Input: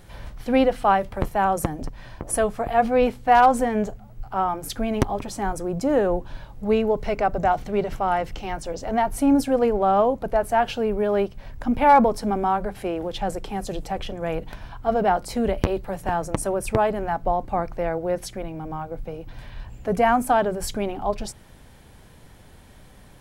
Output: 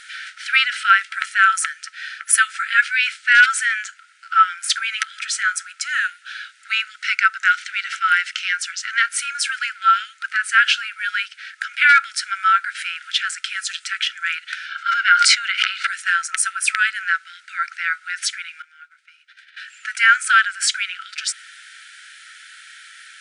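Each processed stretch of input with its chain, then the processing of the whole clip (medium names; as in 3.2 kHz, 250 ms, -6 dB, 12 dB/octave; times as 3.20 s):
14.66–15.87 s: band-pass 230–6200 Hz + comb 1.4 ms, depth 34% + decay stretcher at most 54 dB/s
18.62–19.57 s: expander -28 dBFS + treble shelf 10 kHz -6 dB + compression 4:1, threshold -41 dBFS
whole clip: FFT band-pass 1.3–10 kHz; tilt EQ -2 dB/octave; loudness maximiser +20.5 dB; trim -1 dB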